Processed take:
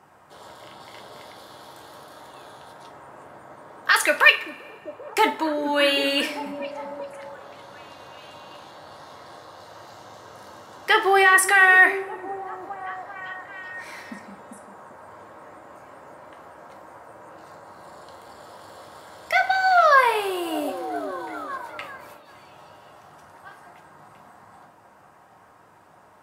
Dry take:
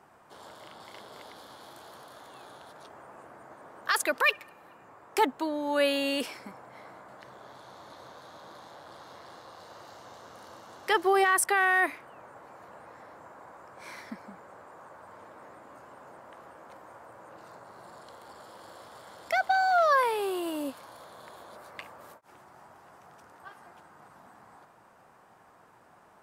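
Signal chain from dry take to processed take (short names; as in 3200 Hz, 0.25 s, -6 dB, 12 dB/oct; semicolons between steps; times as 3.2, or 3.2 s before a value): delay with a stepping band-pass 0.393 s, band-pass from 260 Hz, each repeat 0.7 oct, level -6 dB; dynamic EQ 2200 Hz, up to +7 dB, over -42 dBFS, Q 0.82; two-slope reverb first 0.31 s, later 1.6 s, from -21 dB, DRR 3.5 dB; gain +3 dB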